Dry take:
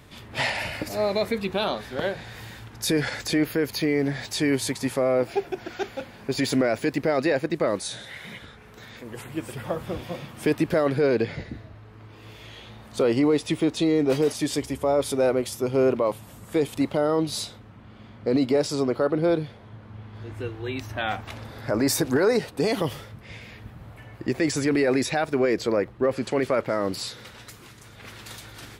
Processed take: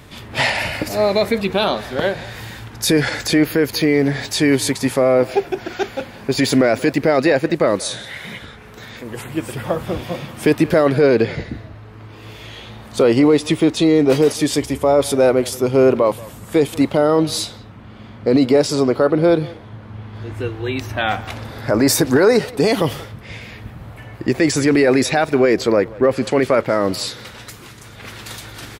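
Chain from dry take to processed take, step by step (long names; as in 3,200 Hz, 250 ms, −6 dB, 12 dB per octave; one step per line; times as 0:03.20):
far-end echo of a speakerphone 180 ms, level −19 dB
level +8 dB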